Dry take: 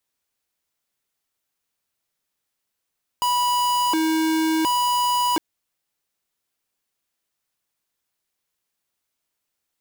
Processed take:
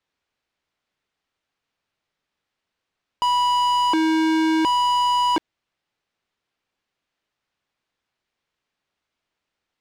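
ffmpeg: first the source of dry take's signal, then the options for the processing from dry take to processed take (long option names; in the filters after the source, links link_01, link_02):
-f lavfi -i "aevalsrc='0.0944*(2*lt(mod((650*t+331/0.7*(0.5-abs(mod(0.7*t,1)-0.5))),1),0.5)-1)':duration=2.16:sample_rate=44100"
-filter_complex "[0:a]lowpass=3600,asplit=2[link_01][link_02];[link_02]asoftclip=type=hard:threshold=-29.5dB,volume=-3dB[link_03];[link_01][link_03]amix=inputs=2:normalize=0"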